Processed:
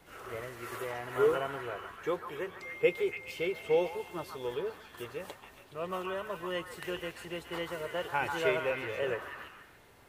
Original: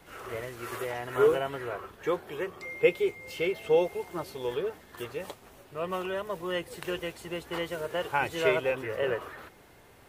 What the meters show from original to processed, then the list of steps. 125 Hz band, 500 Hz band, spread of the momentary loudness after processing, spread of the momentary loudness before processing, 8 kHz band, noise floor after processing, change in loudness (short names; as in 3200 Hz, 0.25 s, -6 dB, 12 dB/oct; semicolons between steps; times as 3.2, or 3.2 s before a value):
-4.0 dB, -4.0 dB, 13 LU, 13 LU, -4.0 dB, -57 dBFS, -3.5 dB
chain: delay with a stepping band-pass 0.14 s, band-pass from 1200 Hz, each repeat 0.7 oct, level -3 dB; gain -4 dB